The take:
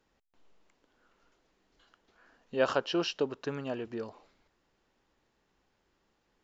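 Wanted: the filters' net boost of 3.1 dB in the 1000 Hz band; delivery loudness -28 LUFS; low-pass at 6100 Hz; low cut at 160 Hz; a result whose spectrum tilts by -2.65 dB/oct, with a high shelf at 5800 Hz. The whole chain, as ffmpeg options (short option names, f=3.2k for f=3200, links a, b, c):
-af "highpass=160,lowpass=6.1k,equalizer=f=1k:t=o:g=4.5,highshelf=f=5.8k:g=-8,volume=4.5dB"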